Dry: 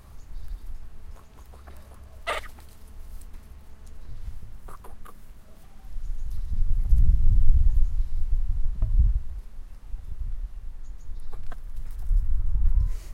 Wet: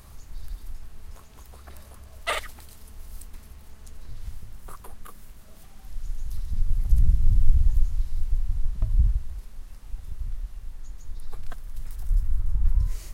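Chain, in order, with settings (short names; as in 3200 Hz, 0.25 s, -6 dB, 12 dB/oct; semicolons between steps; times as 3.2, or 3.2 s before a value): high shelf 2900 Hz +7.5 dB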